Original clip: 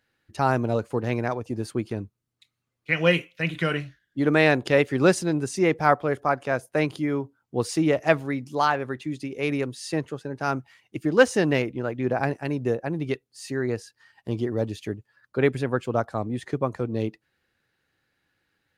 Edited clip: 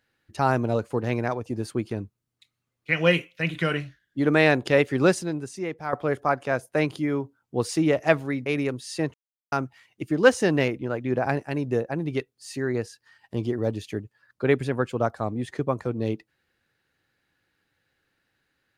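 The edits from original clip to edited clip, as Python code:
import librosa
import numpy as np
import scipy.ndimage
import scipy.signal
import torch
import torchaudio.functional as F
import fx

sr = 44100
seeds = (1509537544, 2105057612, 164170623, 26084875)

y = fx.edit(x, sr, fx.fade_out_to(start_s=5.0, length_s=0.93, curve='qua', floor_db=-11.5),
    fx.cut(start_s=8.46, length_s=0.94),
    fx.silence(start_s=10.08, length_s=0.38), tone=tone)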